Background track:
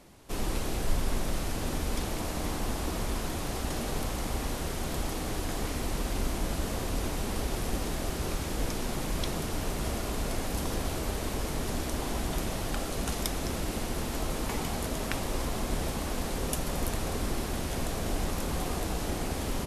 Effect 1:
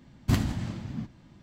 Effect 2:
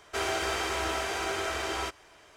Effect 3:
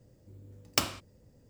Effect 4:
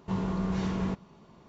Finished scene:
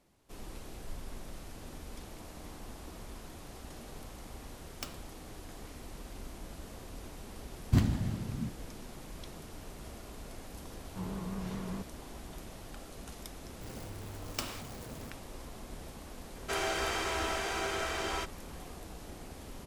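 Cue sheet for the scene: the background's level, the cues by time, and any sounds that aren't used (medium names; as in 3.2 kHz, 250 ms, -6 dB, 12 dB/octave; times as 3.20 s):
background track -14.5 dB
4.05 s: add 3 -15.5 dB
7.44 s: add 1 -6.5 dB + bass shelf 400 Hz +6 dB
10.88 s: add 4 -9 dB + vibrato 4.7 Hz 69 cents
13.61 s: add 3 -11.5 dB + jump at every zero crossing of -29.5 dBFS
16.35 s: add 2 -3 dB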